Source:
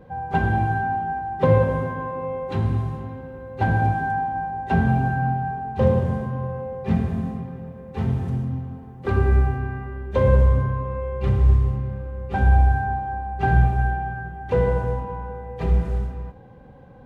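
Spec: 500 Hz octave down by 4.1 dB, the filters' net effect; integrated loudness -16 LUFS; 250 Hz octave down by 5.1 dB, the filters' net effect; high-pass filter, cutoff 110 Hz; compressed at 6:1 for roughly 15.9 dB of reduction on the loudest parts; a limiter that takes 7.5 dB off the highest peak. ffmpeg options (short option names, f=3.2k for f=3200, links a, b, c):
-af "highpass=110,equalizer=f=250:t=o:g=-6.5,equalizer=f=500:t=o:g=-3,acompressor=threshold=-35dB:ratio=6,volume=23.5dB,alimiter=limit=-7dB:level=0:latency=1"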